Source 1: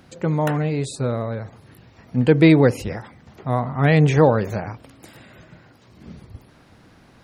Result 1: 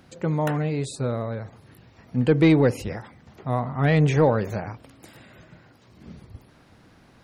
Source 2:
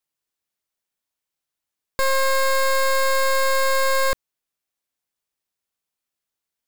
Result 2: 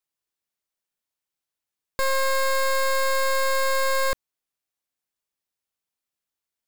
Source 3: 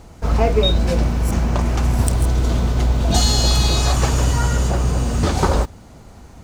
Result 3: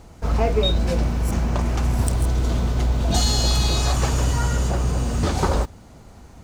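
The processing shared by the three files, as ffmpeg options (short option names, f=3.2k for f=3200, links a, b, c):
-af "asoftclip=type=tanh:threshold=-3.5dB,volume=-3dB"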